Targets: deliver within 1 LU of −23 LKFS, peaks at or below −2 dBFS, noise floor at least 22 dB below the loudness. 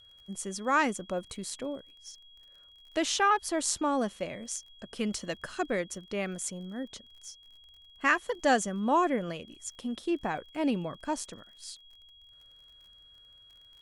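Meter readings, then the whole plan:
crackle rate 38 per second; interfering tone 3,300 Hz; level of the tone −54 dBFS; integrated loudness −31.0 LKFS; sample peak −10.5 dBFS; target loudness −23.0 LKFS
→ click removal
notch filter 3,300 Hz, Q 30
level +8 dB

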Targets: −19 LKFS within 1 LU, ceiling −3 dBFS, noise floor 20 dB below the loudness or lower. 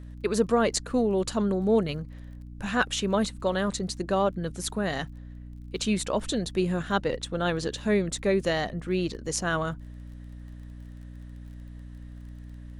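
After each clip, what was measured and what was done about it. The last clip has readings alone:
crackle rate 22 per second; mains hum 60 Hz; hum harmonics up to 300 Hz; level of the hum −40 dBFS; integrated loudness −27.5 LKFS; sample peak −10.0 dBFS; target loudness −19.0 LKFS
→ click removal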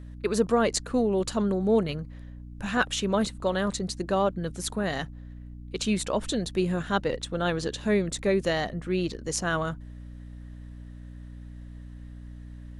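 crackle rate 0 per second; mains hum 60 Hz; hum harmonics up to 300 Hz; level of the hum −40 dBFS
→ mains-hum notches 60/120/180/240/300 Hz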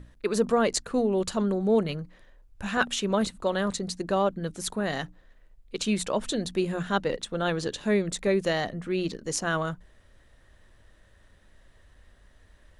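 mains hum none found; integrated loudness −28.0 LKFS; sample peak −10.0 dBFS; target loudness −19.0 LKFS
→ level +9 dB
brickwall limiter −3 dBFS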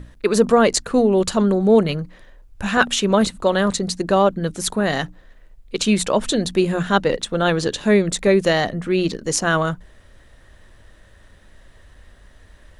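integrated loudness −19.0 LKFS; sample peak −3.0 dBFS; background noise floor −50 dBFS

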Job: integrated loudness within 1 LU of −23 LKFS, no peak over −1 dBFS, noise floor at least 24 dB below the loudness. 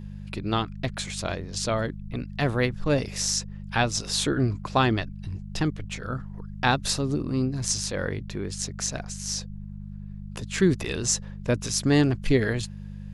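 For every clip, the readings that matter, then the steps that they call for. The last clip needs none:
mains hum 50 Hz; hum harmonics up to 200 Hz; level of the hum −35 dBFS; integrated loudness −27.0 LKFS; sample peak −6.5 dBFS; target loudness −23.0 LKFS
→ hum removal 50 Hz, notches 4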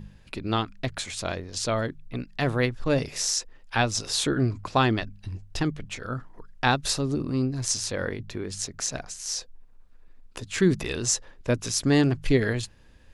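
mains hum none found; integrated loudness −27.0 LKFS; sample peak −6.0 dBFS; target loudness −23.0 LKFS
→ level +4 dB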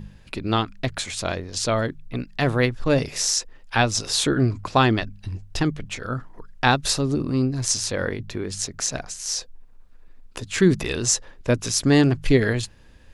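integrated loudness −23.0 LKFS; sample peak −2.0 dBFS; background noise floor −48 dBFS

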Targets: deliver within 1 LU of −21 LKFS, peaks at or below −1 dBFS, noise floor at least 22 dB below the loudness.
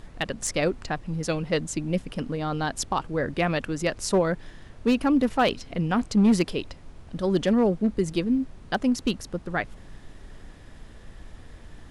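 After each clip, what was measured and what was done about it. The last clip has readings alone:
share of clipped samples 0.4%; peaks flattened at −14.0 dBFS; background noise floor −47 dBFS; target noise floor −48 dBFS; integrated loudness −26.0 LKFS; sample peak −14.0 dBFS; target loudness −21.0 LKFS
→ clipped peaks rebuilt −14 dBFS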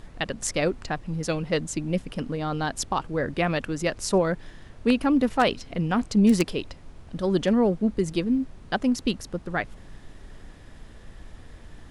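share of clipped samples 0.0%; background noise floor −47 dBFS; target noise floor −48 dBFS
→ noise reduction from a noise print 6 dB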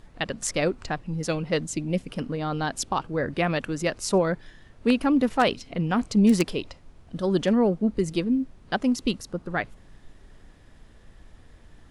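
background noise floor −53 dBFS; integrated loudness −26.0 LKFS; sample peak −5.0 dBFS; target loudness −21.0 LKFS
→ level +5 dB
brickwall limiter −1 dBFS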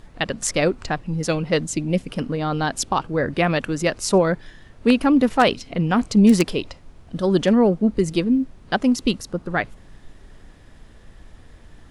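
integrated loudness −21.0 LKFS; sample peak −1.0 dBFS; background noise floor −48 dBFS

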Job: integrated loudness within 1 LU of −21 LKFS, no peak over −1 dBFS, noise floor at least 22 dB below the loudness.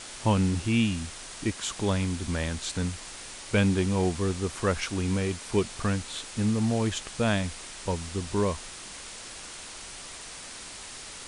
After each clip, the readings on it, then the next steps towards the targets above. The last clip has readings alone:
background noise floor −43 dBFS; target noise floor −51 dBFS; integrated loudness −28.5 LKFS; sample peak −12.0 dBFS; target loudness −21.0 LKFS
→ noise reduction from a noise print 8 dB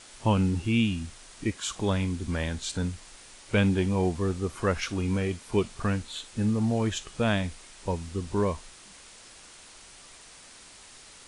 background noise floor −50 dBFS; target noise floor −51 dBFS
→ noise reduction from a noise print 6 dB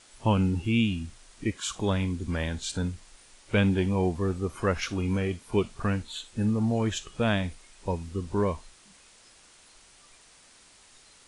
background noise floor −56 dBFS; integrated loudness −28.5 LKFS; sample peak −12.0 dBFS; target loudness −21.0 LKFS
→ level +7.5 dB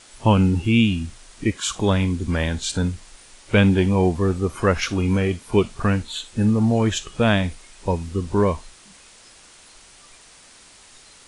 integrated loudness −21.0 LKFS; sample peak −4.5 dBFS; background noise floor −49 dBFS

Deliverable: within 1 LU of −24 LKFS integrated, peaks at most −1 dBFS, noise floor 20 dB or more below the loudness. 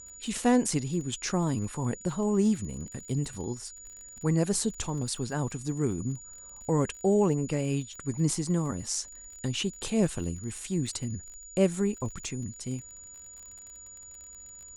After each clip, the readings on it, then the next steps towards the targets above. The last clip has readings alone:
crackle rate 30 per second; interfering tone 6,900 Hz; level of the tone −45 dBFS; integrated loudness −30.0 LKFS; sample peak −11.5 dBFS; target loudness −24.0 LKFS
→ click removal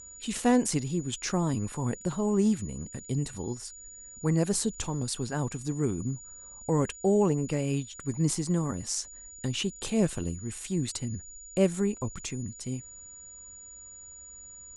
crackle rate 0 per second; interfering tone 6,900 Hz; level of the tone −45 dBFS
→ notch filter 6,900 Hz, Q 30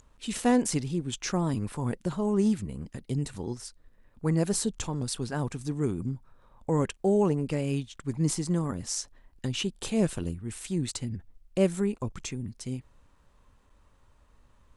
interfering tone none found; integrated loudness −30.0 LKFS; sample peak −11.5 dBFS; target loudness −24.0 LKFS
→ level +6 dB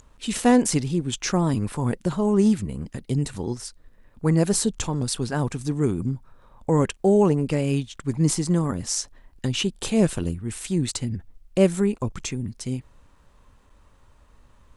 integrated loudness −24.0 LKFS; sample peak −5.5 dBFS; background noise floor −56 dBFS

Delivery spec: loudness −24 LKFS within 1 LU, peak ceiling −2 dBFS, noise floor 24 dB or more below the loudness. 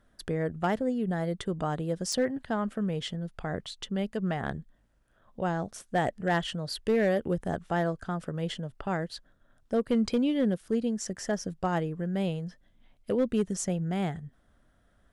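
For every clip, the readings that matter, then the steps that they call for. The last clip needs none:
share of clipped samples 0.3%; peaks flattened at −19.0 dBFS; integrated loudness −30.5 LKFS; sample peak −19.0 dBFS; target loudness −24.0 LKFS
→ clipped peaks rebuilt −19 dBFS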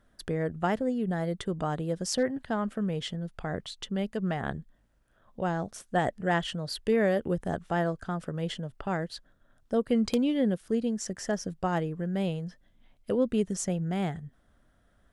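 share of clipped samples 0.0%; integrated loudness −30.5 LKFS; sample peak −10.5 dBFS; target loudness −24.0 LKFS
→ level +6.5 dB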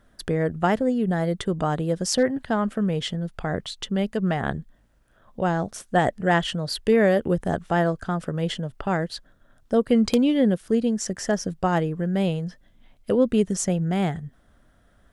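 integrated loudness −24.0 LKFS; sample peak −4.0 dBFS; background noise floor −60 dBFS

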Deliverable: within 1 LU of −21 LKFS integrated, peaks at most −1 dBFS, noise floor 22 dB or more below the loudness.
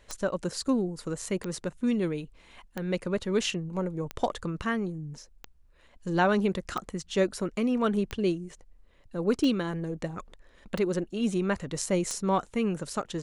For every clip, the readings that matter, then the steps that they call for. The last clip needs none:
number of clicks 10; integrated loudness −30.0 LKFS; sample peak −11.5 dBFS; target loudness −21.0 LKFS
→ click removal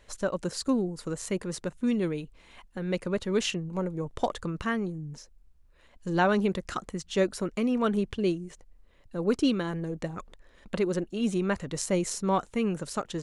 number of clicks 0; integrated loudness −30.0 LKFS; sample peak −11.5 dBFS; target loudness −21.0 LKFS
→ level +9 dB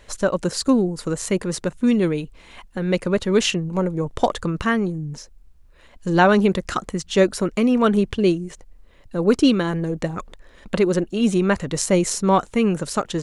integrated loudness −21.0 LKFS; sample peak −2.5 dBFS; background noise floor −49 dBFS

